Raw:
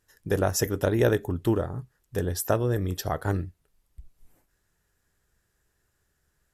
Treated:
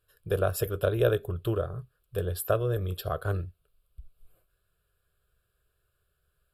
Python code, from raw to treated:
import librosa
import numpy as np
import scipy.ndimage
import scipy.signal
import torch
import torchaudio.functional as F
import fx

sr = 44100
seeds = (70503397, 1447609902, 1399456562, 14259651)

y = fx.fixed_phaser(x, sr, hz=1300.0, stages=8)